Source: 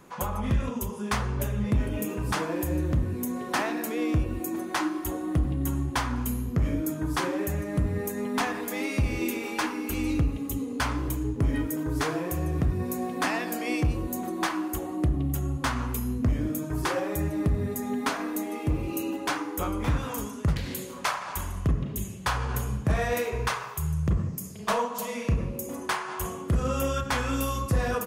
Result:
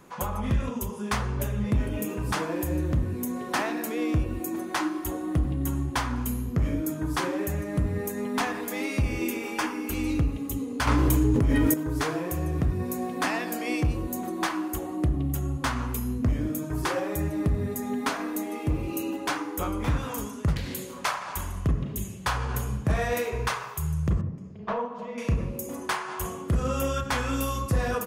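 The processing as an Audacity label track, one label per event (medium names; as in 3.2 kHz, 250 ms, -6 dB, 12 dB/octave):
9.020000	9.890000	band-stop 4 kHz, Q 6.6
10.870000	11.740000	level flattener amount 100%
24.210000	25.180000	tape spacing loss at 10 kHz 41 dB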